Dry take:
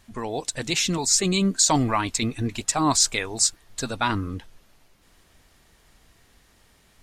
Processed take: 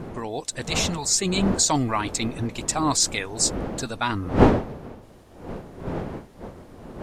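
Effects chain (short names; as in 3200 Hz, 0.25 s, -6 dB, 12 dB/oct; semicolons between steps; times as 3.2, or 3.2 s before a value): wind noise 450 Hz -27 dBFS; 0.62–1.07 bell 320 Hz -7 dB 1 oct; gain -1.5 dB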